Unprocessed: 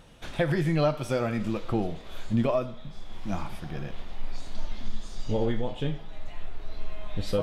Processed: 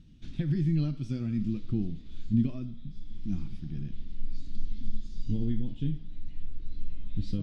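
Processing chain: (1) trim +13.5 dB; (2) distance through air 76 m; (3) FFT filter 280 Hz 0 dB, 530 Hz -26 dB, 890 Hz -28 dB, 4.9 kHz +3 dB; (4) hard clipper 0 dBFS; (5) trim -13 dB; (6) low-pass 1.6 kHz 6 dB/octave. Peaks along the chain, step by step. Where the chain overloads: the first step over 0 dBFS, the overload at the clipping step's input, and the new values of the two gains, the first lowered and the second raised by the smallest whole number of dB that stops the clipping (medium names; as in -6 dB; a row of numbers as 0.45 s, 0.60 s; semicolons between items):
-2.5 dBFS, -3.0 dBFS, -2.5 dBFS, -2.5 dBFS, -15.5 dBFS, -15.5 dBFS; nothing clips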